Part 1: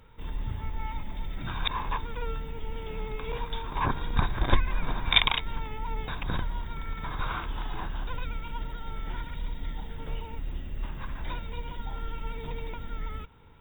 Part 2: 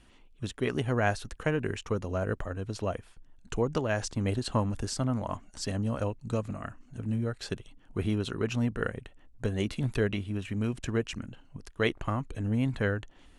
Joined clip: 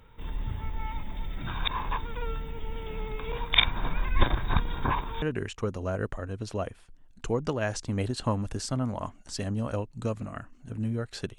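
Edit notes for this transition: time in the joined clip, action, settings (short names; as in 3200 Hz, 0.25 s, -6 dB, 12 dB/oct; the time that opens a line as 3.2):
part 1
3.54–5.22 reverse
5.22 switch to part 2 from 1.5 s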